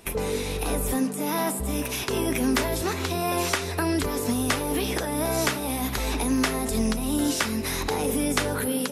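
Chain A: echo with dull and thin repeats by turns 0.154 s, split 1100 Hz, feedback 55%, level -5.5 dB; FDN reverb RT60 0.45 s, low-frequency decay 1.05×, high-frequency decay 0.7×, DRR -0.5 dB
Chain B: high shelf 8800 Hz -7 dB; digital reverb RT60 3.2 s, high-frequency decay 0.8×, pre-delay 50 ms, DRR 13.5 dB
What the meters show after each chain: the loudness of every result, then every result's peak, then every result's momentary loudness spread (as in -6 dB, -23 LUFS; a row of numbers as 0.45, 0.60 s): -21.0, -26.0 LUFS; -6.0, -10.0 dBFS; 4, 4 LU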